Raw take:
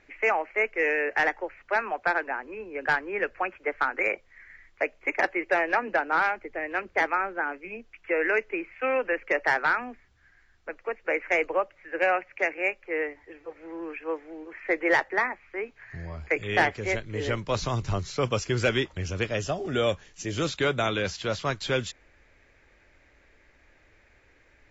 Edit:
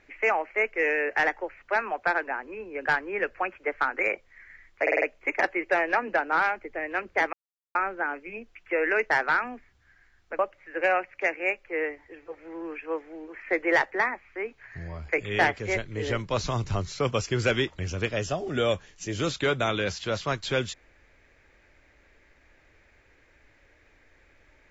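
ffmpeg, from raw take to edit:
-filter_complex "[0:a]asplit=8[s0][s1][s2][s3][s4][s5][s6][s7];[s0]atrim=end=4.872[s8];[s1]atrim=start=4.818:end=4.872[s9];[s2]atrim=start=4.818:end=4.872[s10];[s3]atrim=start=4.818:end=4.872[s11];[s4]atrim=start=4.818:end=7.13,asetpts=PTS-STARTPTS,afade=t=out:st=2.308:d=0.004:c=hsin,apad=pad_dur=0.42[s12];[s5]atrim=start=7.13:end=8.482,asetpts=PTS-STARTPTS,afade=t=in:d=0.004:c=hsin[s13];[s6]atrim=start=9.458:end=10.752[s14];[s7]atrim=start=11.568[s15];[s8][s9]acrossfade=d=0.004:c1=hsin:c2=hsin[s16];[s16][s10]acrossfade=d=0.004:c1=hsin:c2=hsin[s17];[s17][s11]acrossfade=d=0.004:c1=hsin:c2=hsin[s18];[s12][s13]concat=n=2:v=0:a=1[s19];[s18][s19]acrossfade=d=0.004:c1=hsin:c2=hsin[s20];[s20][s14]acrossfade=d=0.004:c1=hsin:c2=hsin[s21];[s21][s15]acrossfade=d=0.004:c1=hsin:c2=hsin"

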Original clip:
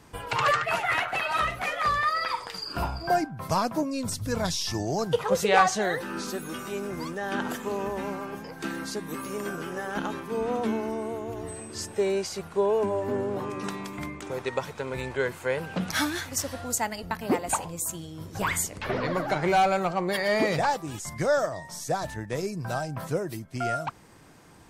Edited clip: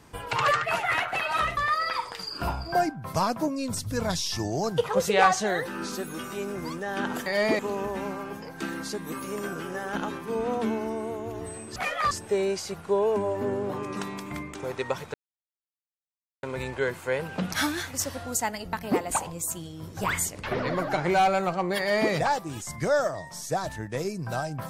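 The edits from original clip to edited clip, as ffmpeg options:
-filter_complex "[0:a]asplit=7[s0][s1][s2][s3][s4][s5][s6];[s0]atrim=end=1.572[s7];[s1]atrim=start=1.918:end=7.612[s8];[s2]atrim=start=20.168:end=20.502[s9];[s3]atrim=start=7.608:end=11.782[s10];[s4]atrim=start=1.568:end=1.922[s11];[s5]atrim=start=11.778:end=14.81,asetpts=PTS-STARTPTS,afade=t=out:st=3.028:d=0.004:c=hsin,apad=pad_dur=1.29[s12];[s6]atrim=start=14.81,asetpts=PTS-STARTPTS,afade=t=in:d=0.004:c=hsin[s13];[s7][s8]acrossfade=d=0.004:c1=hsin:c2=hsin[s14];[s14][s9]acrossfade=d=0.004:c1=hsin:c2=hsin[s15];[s15][s10]acrossfade=d=0.004:c1=hsin:c2=hsin[s16];[s16][s11]acrossfade=d=0.004:c1=hsin:c2=hsin[s17];[s12][s13]concat=n=2:v=0:a=1[s18];[s17][s18]acrossfade=d=0.004:c1=hsin:c2=hsin"

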